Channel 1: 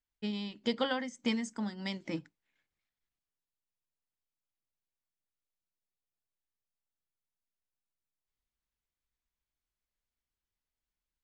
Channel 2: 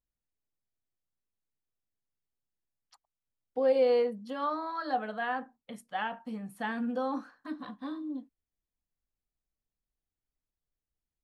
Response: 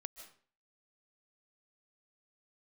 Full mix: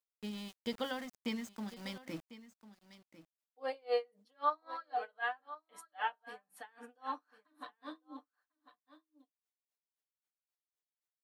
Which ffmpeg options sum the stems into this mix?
-filter_complex "[0:a]aeval=exprs='val(0)*gte(abs(val(0)),0.00841)':channel_layout=same,volume=-6.5dB,asplit=2[link_01][link_02];[link_02]volume=-16dB[link_03];[1:a]highpass=590,aecho=1:1:6.7:0.67,aeval=exprs='val(0)*pow(10,-33*(0.5-0.5*cos(2*PI*3.8*n/s))/20)':channel_layout=same,volume=-0.5dB,asplit=2[link_04][link_05];[link_05]volume=-15.5dB[link_06];[link_03][link_06]amix=inputs=2:normalize=0,aecho=0:1:1048:1[link_07];[link_01][link_04][link_07]amix=inputs=3:normalize=0"

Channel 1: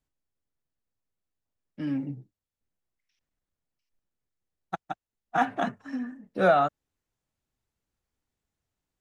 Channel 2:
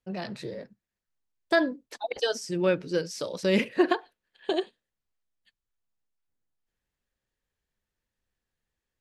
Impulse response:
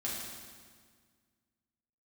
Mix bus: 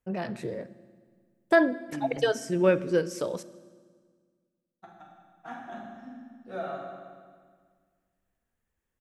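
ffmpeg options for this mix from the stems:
-filter_complex "[0:a]adelay=100,volume=-5dB,asplit=2[link_01][link_02];[link_02]volume=-13dB[link_03];[1:a]equalizer=frequency=4300:width=1.4:gain=-12,volume=2dB,asplit=3[link_04][link_05][link_06];[link_04]atrim=end=3.43,asetpts=PTS-STARTPTS,afade=type=out:start_time=3.426:duration=0.004:curve=hsin[link_07];[link_05]atrim=start=3.43:end=4.89,asetpts=PTS-STARTPTS,volume=0[link_08];[link_06]atrim=start=4.89,asetpts=PTS-STARTPTS,afade=type=in:duration=0.004:curve=hsin[link_09];[link_07][link_08][link_09]concat=n=3:v=0:a=1,asplit=3[link_10][link_11][link_12];[link_11]volume=-16.5dB[link_13];[link_12]apad=whole_len=401600[link_14];[link_01][link_14]sidechaingate=range=-25dB:threshold=-46dB:ratio=16:detection=peak[link_15];[2:a]atrim=start_sample=2205[link_16];[link_03][link_13]amix=inputs=2:normalize=0[link_17];[link_17][link_16]afir=irnorm=-1:irlink=0[link_18];[link_15][link_10][link_18]amix=inputs=3:normalize=0"

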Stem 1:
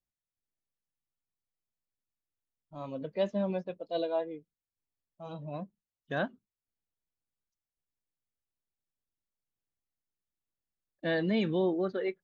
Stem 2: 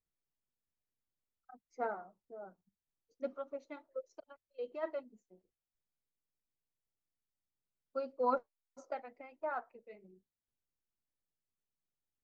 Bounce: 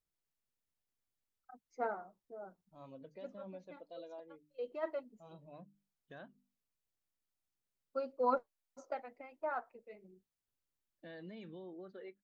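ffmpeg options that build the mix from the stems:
ffmpeg -i stem1.wav -i stem2.wav -filter_complex "[0:a]bandreject=frequency=50:width_type=h:width=6,bandreject=frequency=100:width_type=h:width=6,bandreject=frequency=150:width_type=h:width=6,bandreject=frequency=200:width_type=h:width=6,bandreject=frequency=250:width_type=h:width=6,bandreject=frequency=300:width_type=h:width=6,alimiter=level_in=5dB:limit=-24dB:level=0:latency=1:release=246,volume=-5dB,volume=-13dB,asplit=2[link_01][link_02];[1:a]volume=0dB[link_03];[link_02]apad=whole_len=543918[link_04];[link_03][link_04]sidechaincompress=threshold=-56dB:ratio=8:attack=9.2:release=226[link_05];[link_01][link_05]amix=inputs=2:normalize=0" out.wav

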